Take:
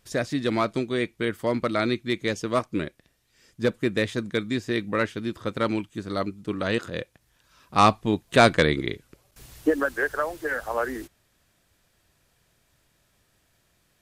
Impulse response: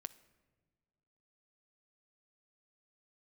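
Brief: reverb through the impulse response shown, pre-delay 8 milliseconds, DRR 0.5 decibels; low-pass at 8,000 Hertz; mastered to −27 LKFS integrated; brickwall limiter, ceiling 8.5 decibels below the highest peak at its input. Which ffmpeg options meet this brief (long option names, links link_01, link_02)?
-filter_complex "[0:a]lowpass=8000,alimiter=limit=-14dB:level=0:latency=1,asplit=2[link_01][link_02];[1:a]atrim=start_sample=2205,adelay=8[link_03];[link_02][link_03]afir=irnorm=-1:irlink=0,volume=4dB[link_04];[link_01][link_04]amix=inputs=2:normalize=0,volume=-2.5dB"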